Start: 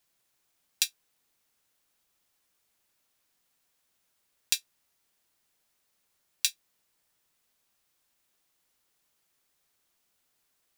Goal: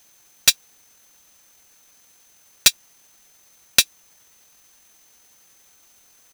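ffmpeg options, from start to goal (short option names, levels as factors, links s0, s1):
-af "aeval=exprs='0.891*sin(PI/2*6.31*val(0)/0.891)':c=same,atempo=1.7,aeval=exprs='val(0)+0.00158*sin(2*PI*6200*n/s)':c=same,volume=0.891"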